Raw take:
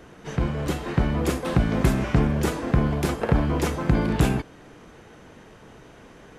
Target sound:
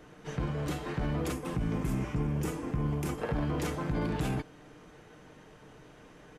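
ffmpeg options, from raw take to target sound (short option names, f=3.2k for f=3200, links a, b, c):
-filter_complex "[0:a]asettb=1/sr,asplit=3[a][b][c];[a]atrim=end=1.324[d];[b]atrim=start=1.32:end=3.18,asetpts=PTS-STARTPTS,afade=t=in:d=0.004:c=qsin,afade=t=out:st=1.856:d=0.004:c=qsin,equalizer=f=630:t=o:w=0.67:g=-7,equalizer=f=1.6k:t=o:w=0.67:g=-6,equalizer=f=4k:t=o:w=0.67:g=-9[e];[c]atrim=start=3.176[f];[d][e]acrossfade=d=0.004:c1=hsin:c2=qsin[g];[g][f]acrossfade=d=0.004:c1=qsin:c2=hsin,alimiter=limit=-17.5dB:level=0:latency=1:release=11,aecho=1:1:6.6:0.34,volume=-6.5dB"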